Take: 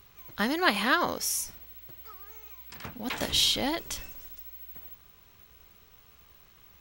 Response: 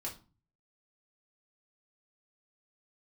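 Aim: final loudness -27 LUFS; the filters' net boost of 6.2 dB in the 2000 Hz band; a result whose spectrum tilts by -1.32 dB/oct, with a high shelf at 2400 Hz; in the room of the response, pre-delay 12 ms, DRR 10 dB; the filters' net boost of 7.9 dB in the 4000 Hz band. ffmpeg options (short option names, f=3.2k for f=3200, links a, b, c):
-filter_complex "[0:a]equalizer=f=2k:t=o:g=4.5,highshelf=f=2.4k:g=5.5,equalizer=f=4k:t=o:g=3.5,asplit=2[a][b];[1:a]atrim=start_sample=2205,adelay=12[c];[b][c]afir=irnorm=-1:irlink=0,volume=-9.5dB[d];[a][d]amix=inputs=2:normalize=0,volume=-6dB"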